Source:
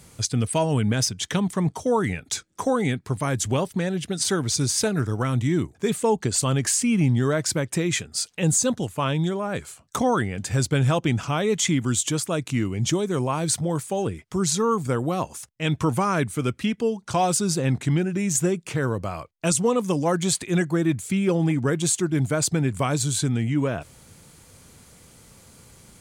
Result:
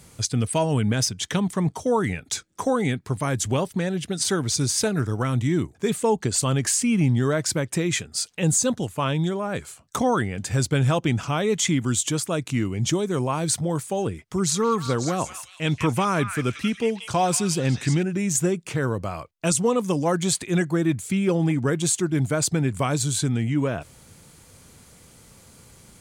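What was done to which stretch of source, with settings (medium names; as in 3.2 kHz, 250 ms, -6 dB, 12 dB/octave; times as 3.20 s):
14.20–18.03 s: repeats whose band climbs or falls 181 ms, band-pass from 2 kHz, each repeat 0.7 oct, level -2 dB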